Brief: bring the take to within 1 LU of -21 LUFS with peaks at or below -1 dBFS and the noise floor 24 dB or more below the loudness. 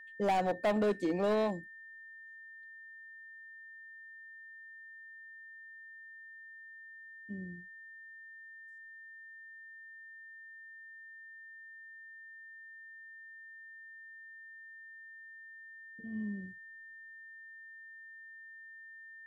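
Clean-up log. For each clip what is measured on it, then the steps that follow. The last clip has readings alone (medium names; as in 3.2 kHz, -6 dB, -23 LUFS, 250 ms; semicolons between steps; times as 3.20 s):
clipped samples 0.5%; clipping level -25.5 dBFS; steady tone 1.8 kHz; tone level -49 dBFS; loudness -41.5 LUFS; peak level -25.5 dBFS; loudness target -21.0 LUFS
-> clip repair -25.5 dBFS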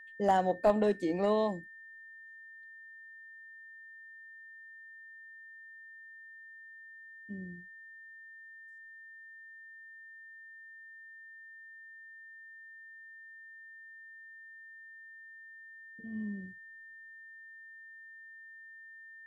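clipped samples 0.0%; steady tone 1.8 kHz; tone level -49 dBFS
-> band-stop 1.8 kHz, Q 30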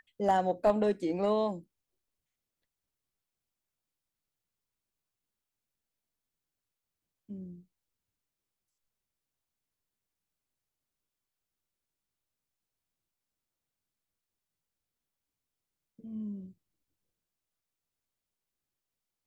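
steady tone not found; loudness -30.5 LUFS; peak level -16.0 dBFS; loudness target -21.0 LUFS
-> trim +9.5 dB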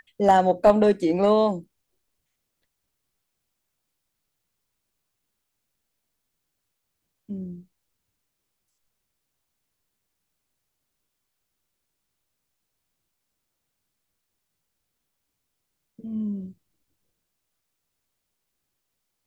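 loudness -21.0 LUFS; peak level -6.5 dBFS; noise floor -80 dBFS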